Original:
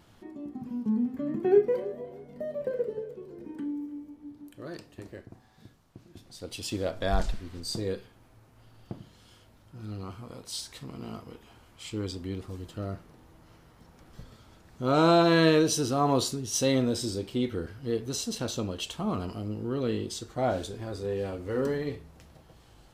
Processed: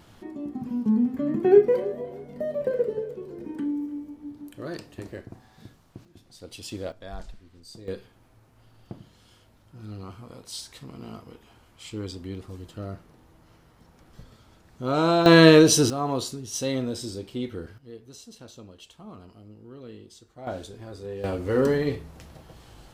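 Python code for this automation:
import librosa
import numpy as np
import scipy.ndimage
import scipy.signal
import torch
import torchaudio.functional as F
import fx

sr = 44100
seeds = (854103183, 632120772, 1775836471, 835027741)

y = fx.gain(x, sr, db=fx.steps((0.0, 5.5), (6.05, -3.0), (6.92, -12.0), (7.88, -0.5), (15.26, 8.5), (15.9, -2.5), (17.78, -13.5), (20.47, -4.0), (21.24, 7.0)))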